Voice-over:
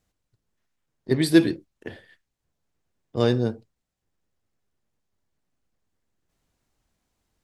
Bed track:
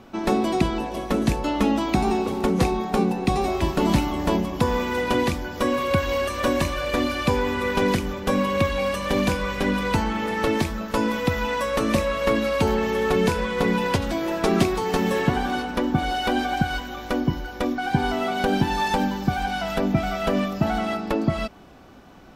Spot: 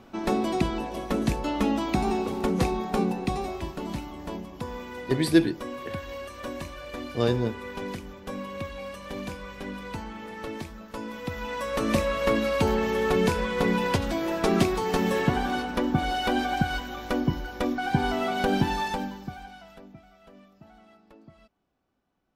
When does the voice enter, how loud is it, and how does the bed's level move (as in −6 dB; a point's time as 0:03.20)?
4.00 s, −3.0 dB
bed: 0:03.12 −4 dB
0:03.85 −13.5 dB
0:11.06 −13.5 dB
0:11.94 −2.5 dB
0:18.68 −2.5 dB
0:20.07 −29.5 dB